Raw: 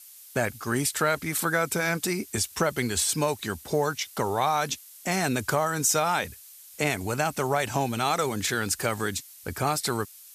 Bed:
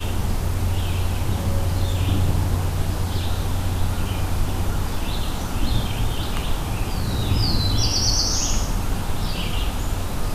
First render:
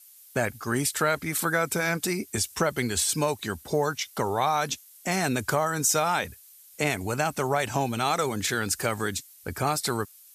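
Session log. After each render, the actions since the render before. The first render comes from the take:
broadband denoise 6 dB, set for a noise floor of −49 dBFS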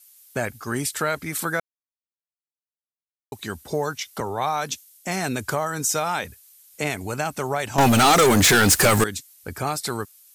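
0:01.60–0:03.32: silence
0:04.20–0:05.07: multiband upward and downward expander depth 40%
0:07.78–0:09.04: leveller curve on the samples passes 5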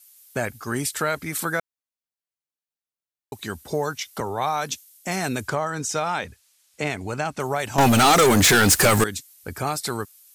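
0:05.48–0:07.40: high-frequency loss of the air 62 metres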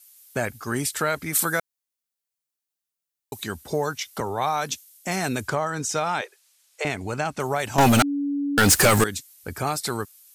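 0:01.33–0:03.44: high-shelf EQ 4,600 Hz +8.5 dB
0:06.21–0:06.85: Butterworth high-pass 360 Hz 96 dB per octave
0:08.02–0:08.58: beep over 284 Hz −22.5 dBFS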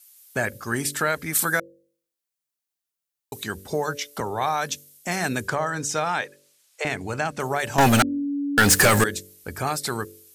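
hum removal 48.11 Hz, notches 12
dynamic equaliser 1,700 Hz, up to +6 dB, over −44 dBFS, Q 5.8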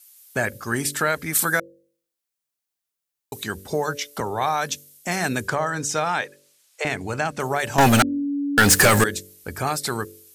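level +1.5 dB

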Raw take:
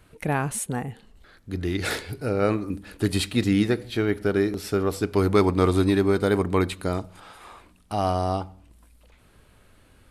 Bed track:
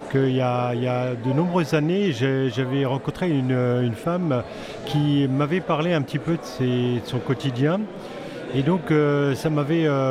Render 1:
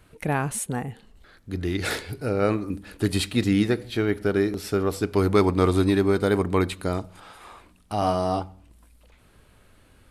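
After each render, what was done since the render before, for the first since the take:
0:07.99–0:08.40: double-tracking delay 28 ms −5 dB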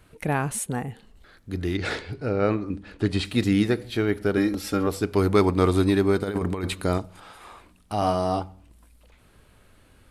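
0:01.77–0:03.25: high-frequency loss of the air 100 metres
0:04.37–0:04.87: comb filter 3.7 ms, depth 70%
0:06.23–0:06.98: compressor whose output falls as the input rises −24 dBFS, ratio −0.5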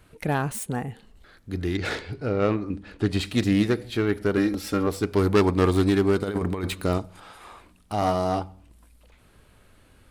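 phase distortion by the signal itself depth 0.12 ms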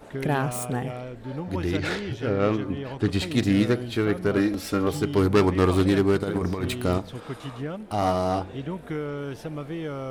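mix in bed track −12 dB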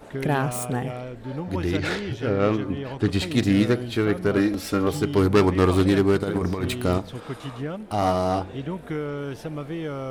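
level +1.5 dB

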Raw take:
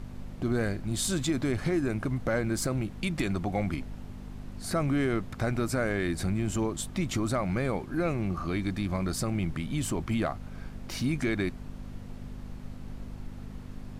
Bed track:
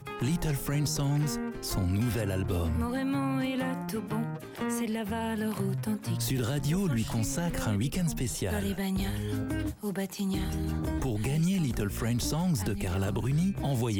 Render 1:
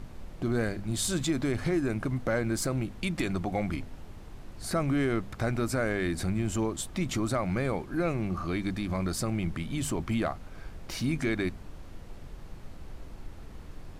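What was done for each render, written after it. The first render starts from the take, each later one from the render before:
hum removal 50 Hz, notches 5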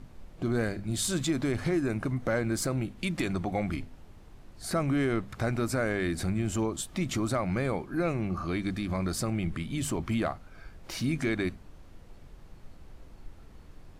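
noise reduction from a noise print 6 dB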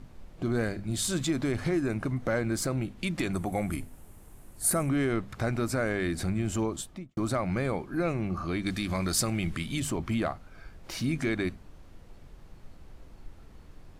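0:03.33–0:04.89: high shelf with overshoot 6,900 Hz +13.5 dB, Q 1.5
0:06.73–0:07.17: fade out and dull
0:08.66–0:09.80: high-shelf EQ 2,000 Hz +9 dB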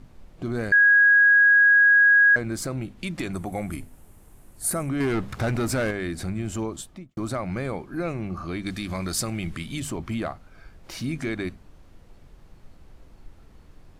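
0:00.72–0:02.36: beep over 1,650 Hz −12.5 dBFS
0:05.00–0:05.91: leveller curve on the samples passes 2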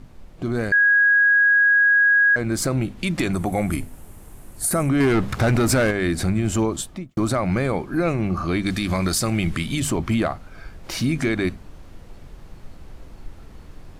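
in parallel at −0.5 dB: speech leveller within 5 dB
on the sum: brickwall limiter −12.5 dBFS, peak gain reduction 9 dB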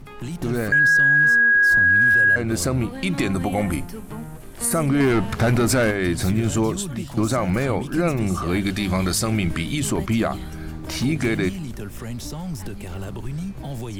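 mix in bed track −2.5 dB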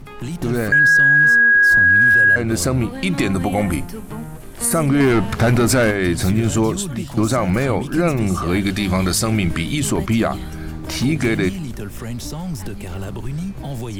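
level +3.5 dB

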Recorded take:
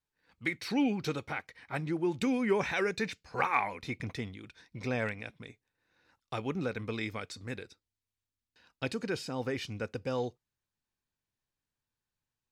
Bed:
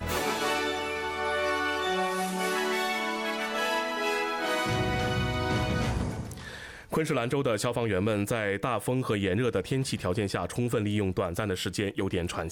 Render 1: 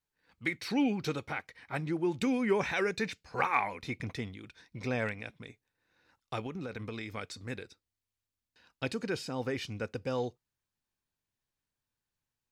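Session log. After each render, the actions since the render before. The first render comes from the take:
0:06.46–0:07.17: downward compressor, threshold −35 dBFS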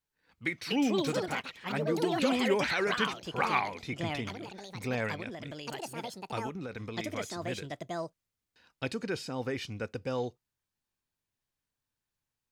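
delay with pitch and tempo change per echo 361 ms, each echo +5 semitones, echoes 2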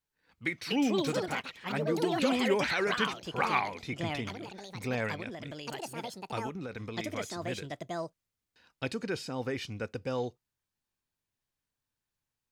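no processing that can be heard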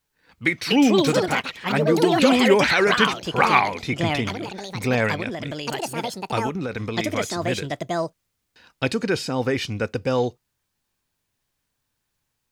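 level +11.5 dB

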